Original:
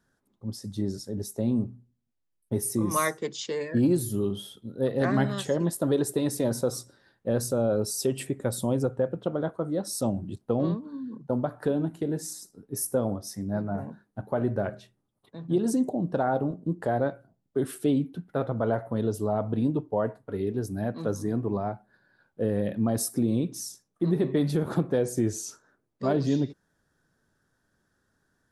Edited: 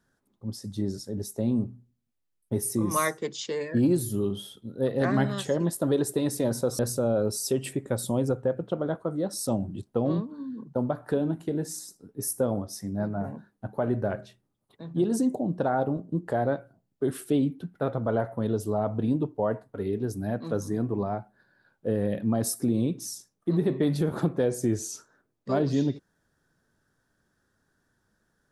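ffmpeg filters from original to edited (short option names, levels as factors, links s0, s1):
-filter_complex "[0:a]asplit=2[s0][s1];[s0]atrim=end=6.792[s2];[s1]atrim=start=7.328[s3];[s2][s3]acrossfade=d=0.004:c1=hsin:c2=hsin"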